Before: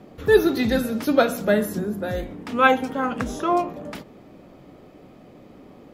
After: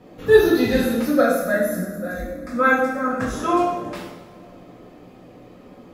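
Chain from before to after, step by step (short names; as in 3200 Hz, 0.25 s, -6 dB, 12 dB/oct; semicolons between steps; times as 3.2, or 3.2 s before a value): 1.02–3.21 fixed phaser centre 600 Hz, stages 8; two-slope reverb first 0.79 s, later 2.6 s, DRR -6 dB; gain -4 dB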